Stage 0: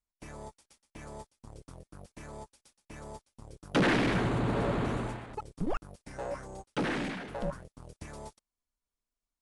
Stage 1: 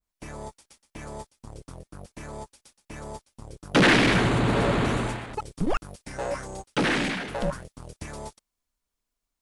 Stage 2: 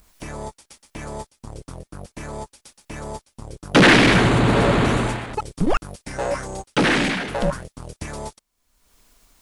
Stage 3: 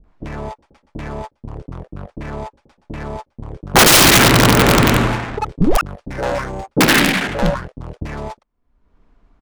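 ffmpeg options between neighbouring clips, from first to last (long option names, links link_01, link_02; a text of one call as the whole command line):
ffmpeg -i in.wav -af "adynamicequalizer=threshold=0.00398:dfrequency=1600:dqfactor=0.7:tfrequency=1600:tqfactor=0.7:attack=5:release=100:ratio=0.375:range=3:mode=boostabove:tftype=highshelf,volume=6.5dB" out.wav
ffmpeg -i in.wav -af "acompressor=mode=upward:threshold=-43dB:ratio=2.5,volume=6dB" out.wav
ffmpeg -i in.wav -filter_complex "[0:a]adynamicsmooth=sensitivity=4.5:basefreq=1100,acrossover=split=570[link_01][link_02];[link_02]adelay=40[link_03];[link_01][link_03]amix=inputs=2:normalize=0,aeval=exprs='(mod(3.16*val(0)+1,2)-1)/3.16':channel_layout=same,volume=6.5dB" out.wav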